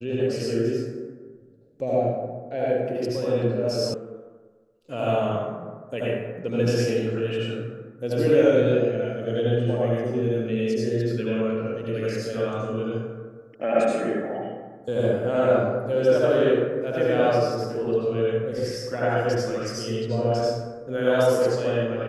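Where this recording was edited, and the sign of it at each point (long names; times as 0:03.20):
0:03.94: cut off before it has died away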